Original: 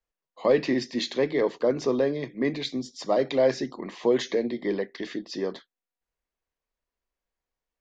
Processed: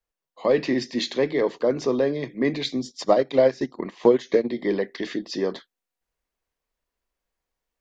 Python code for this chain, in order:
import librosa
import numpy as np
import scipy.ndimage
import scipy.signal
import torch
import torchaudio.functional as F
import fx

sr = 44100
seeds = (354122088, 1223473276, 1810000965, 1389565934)

p1 = fx.rider(x, sr, range_db=4, speed_s=0.5)
p2 = x + (p1 * librosa.db_to_amplitude(-1.5))
p3 = fx.transient(p2, sr, attack_db=6, sustain_db=-10, at=(2.91, 4.49), fade=0.02)
y = p3 * librosa.db_to_amplitude(-3.0)